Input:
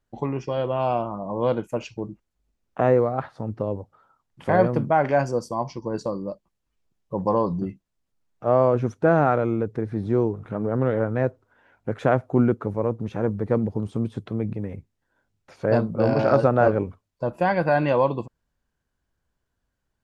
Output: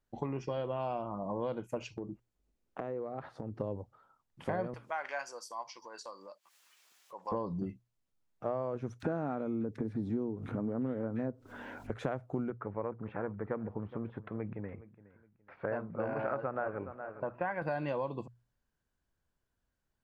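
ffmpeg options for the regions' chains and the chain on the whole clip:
-filter_complex "[0:a]asettb=1/sr,asplit=3[s0][s1][s2];[s0]atrim=end=1.884[s3];[s1]atrim=start=1.88:end=3.58,asetpts=PTS-STARTPTS,afade=t=in:d=0.004:c=qsin,afade=t=out:st=1.696:d=0.004:c=qsin,equalizer=f=370:w=0.9:g=5.5,acompressor=threshold=0.0316:ratio=5:attack=3.2:release=140:knee=1:detection=peak[s4];[s2]atrim=start=3.576[s5];[s3][s4]acrossfade=d=0.004:c1=hsin:c2=qsin[s6];[s6][s5]acrossfade=d=0.004:c1=qsin:c2=hsin,asettb=1/sr,asplit=3[s7][s8][s9];[s7]atrim=end=4.744[s10];[s8]atrim=start=4.74:end=7.32,asetpts=PTS-STARTPTS,afade=t=in:d=0.004:c=qsin,afade=t=out:st=2.576:d=0.004:c=qsin,highpass=1300,acompressor=mode=upward:threshold=0.0141:ratio=2.5:attack=3.2:release=140:knee=2.83:detection=peak[s11];[s9]atrim=start=7.316[s12];[s10][s11]acrossfade=d=0.004:c1=hsin:c2=qsin[s13];[s13][s12]acrossfade=d=0.004:c1=qsin:c2=hsin,asettb=1/sr,asplit=3[s14][s15][s16];[s14]atrim=end=9.004[s17];[s15]atrim=start=9:end=11.9,asetpts=PTS-STARTPTS,afade=t=in:d=0.004:c=qsin,afade=t=out:st=2.896:d=0.004:c=qsin,equalizer=f=250:w=2.6:g=10.5,acompressor=mode=upward:threshold=0.0891:ratio=2.5:attack=3.2:release=140:knee=2.83:detection=peak,acrossover=split=1700[s18][s19];[s18]adelay=30[s20];[s20][s19]amix=inputs=2:normalize=0,atrim=end_sample=127890[s21];[s16]atrim=start=11.896[s22];[s17][s21]acrossfade=d=0.004:c1=hsin:c2=qsin[s23];[s23][s22]acrossfade=d=0.004:c1=qsin:c2=hsin,asettb=1/sr,asplit=3[s24][s25][s26];[s24]atrim=end=12.504[s27];[s25]atrim=start=12.5:end=17.62,asetpts=PTS-STARTPTS,afade=t=in:d=0.004:c=qsin,afade=t=out:st=5.116:d=0.004:c=qsin,lowpass=f=2000:w=0.5412,lowpass=f=2000:w=1.3066,tiltshelf=f=790:g=-7,aecho=1:1:416|832:0.119|0.0333,atrim=end_sample=225792[s28];[s26]atrim=start=17.616[s29];[s27][s28]acrossfade=d=0.004:c1=hsin:c2=qsin[s30];[s30][s29]acrossfade=d=0.004:c1=qsin:c2=hsin,acompressor=threshold=0.0501:ratio=6,bandreject=f=60:t=h:w=6,bandreject=f=120:t=h:w=6,volume=0.531"

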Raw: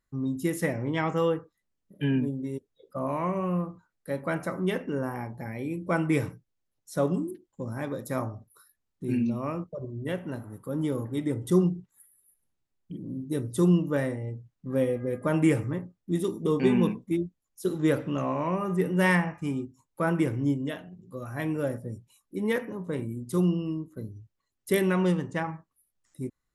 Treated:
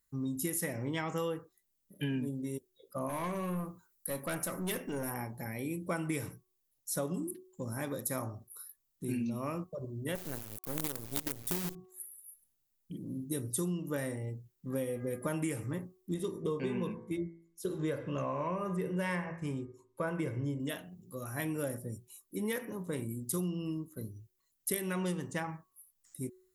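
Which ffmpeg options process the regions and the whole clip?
-filter_complex "[0:a]asettb=1/sr,asplit=3[s0][s1][s2];[s0]atrim=end=3.094[s3];[s1]atrim=start=3.09:end=5.11,asetpts=PTS-STARTPTS,afade=t=in:d=0.004:c=qsin,afade=t=out:st=2.016:d=0.004:c=qsin,highshelf=f=6400:g=8.5,aeval=exprs='(tanh(17.8*val(0)+0.25)-tanh(0.25))/17.8':c=same[s4];[s2]atrim=start=5.106[s5];[s3][s4]acrossfade=d=0.004:c1=hsin:c2=qsin[s6];[s6][s5]acrossfade=d=0.004:c1=qsin:c2=hsin,asettb=1/sr,asplit=3[s7][s8][s9];[s7]atrim=end=10.154[s10];[s8]atrim=start=10.15:end=11.75,asetpts=PTS-STARTPTS,afade=t=in:d=0.004:c=qsin,afade=t=out:st=1.596:d=0.004:c=qsin,volume=7.08,asoftclip=hard,volume=0.141,acrusher=bits=5:dc=4:mix=0:aa=0.000001[s11];[s9]atrim=start=11.746[s12];[s10][s11]acrossfade=d=0.004:c1=hsin:c2=qsin[s13];[s13][s12]acrossfade=d=0.004:c1=qsin:c2=hsin,asettb=1/sr,asplit=3[s14][s15][s16];[s14]atrim=end=16.144[s17];[s15]atrim=start=16.14:end=20.6,asetpts=PTS-STARTPTS,afade=t=in:d=0.004:c=qsin,afade=t=out:st=4.456:d=0.004:c=qsin,aemphasis=mode=reproduction:type=75fm,aecho=1:1:1.9:0.38,atrim=end_sample=196686,bandreject=f=55.66:t=h:w=4,bandreject=f=111.32:t=h:w=4,bandreject=f=166.98:t=h:w=4,bandreject=f=222.64:t=h:w=4,bandreject=f=278.3:t=h:w=4,bandreject=f=333.96:t=h:w=4,bandreject=f=389.62:t=h:w=4,bandreject=f=445.28:t=h:w=4,bandreject=f=500.94:t=h:w=4,bandreject=f=556.6:t=h:w=4,bandreject=f=612.26:t=h:w=4,bandreject=f=667.92:t=h:w=4,bandreject=f=723.58:t=h:w=4,bandreject=f=779.24:t=h:w=4,bandreject=f=834.9:t=h:w=4,bandreject=f=890.56:t=h:w=4,bandreject=f=946.22:t=h:w=4,bandreject=f=1001.88:t=h:w=4,bandreject=f=1057.54:t=h:w=4,bandreject=f=1113.2:t=h:w=4,bandreject=f=1168.86:t=h:w=4,bandreject=f=1224.52:t=h:w=4,bandreject=f=1280.18:t=h:w=4,bandreject=f=1335.84:t=h:w=4,bandreject=f=1391.5:t=h:w=4,bandreject=f=1447.16:t=h:w=4,bandreject=f=1502.82:t=h:w=4,bandreject=f=1558.48:t=h:w=4,bandreject=f=1614.14:t=h:w=4,bandreject=f=1669.8:t=h:w=4,bandreject=f=1725.46:t=h:w=4,bandreject=f=1781.12:t=h:w=4,bandreject=f=1836.78:t=h:w=4,bandreject=f=1892.44:t=h:w=4,bandreject=f=1948.1:t=h:w=4,bandreject=f=2003.76:t=h:w=4,bandreject=f=2059.42:t=h:w=4,bandreject=f=2115.08:t=h:w=4,bandreject=f=2170.74:t=h:w=4,bandreject=f=2226.4:t=h:w=4[s18];[s16]atrim=start=20.596[s19];[s17][s18]acrossfade=d=0.004:c1=hsin:c2=qsin[s20];[s20][s19]acrossfade=d=0.004:c1=qsin:c2=hsin,aemphasis=mode=production:type=75fm,bandreject=f=370.2:t=h:w=4,bandreject=f=740.4:t=h:w=4,bandreject=f=1110.6:t=h:w=4,acompressor=threshold=0.0447:ratio=10,volume=0.668"

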